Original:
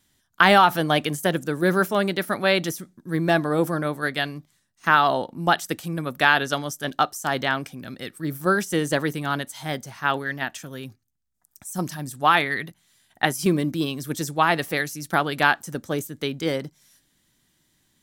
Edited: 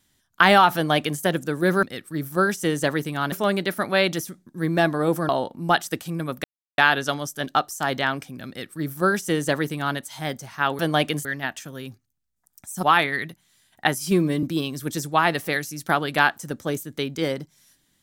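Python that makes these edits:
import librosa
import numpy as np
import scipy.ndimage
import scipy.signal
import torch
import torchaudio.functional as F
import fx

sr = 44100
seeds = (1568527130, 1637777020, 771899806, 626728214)

y = fx.edit(x, sr, fx.duplicate(start_s=0.75, length_s=0.46, to_s=10.23),
    fx.cut(start_s=3.8, length_s=1.27),
    fx.insert_silence(at_s=6.22, length_s=0.34),
    fx.duplicate(start_s=7.92, length_s=1.49, to_s=1.83),
    fx.cut(start_s=11.81, length_s=0.4),
    fx.stretch_span(start_s=13.39, length_s=0.28, factor=1.5), tone=tone)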